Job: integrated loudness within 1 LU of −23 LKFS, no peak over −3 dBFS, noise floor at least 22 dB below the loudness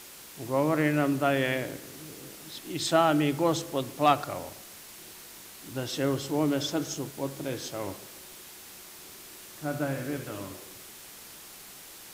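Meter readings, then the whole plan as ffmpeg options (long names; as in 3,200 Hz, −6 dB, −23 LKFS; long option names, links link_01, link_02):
background noise floor −47 dBFS; target noise floor −51 dBFS; integrated loudness −29.0 LKFS; sample peak −10.0 dBFS; target loudness −23.0 LKFS
→ -af "afftdn=noise_reduction=6:noise_floor=-47"
-af "volume=6dB"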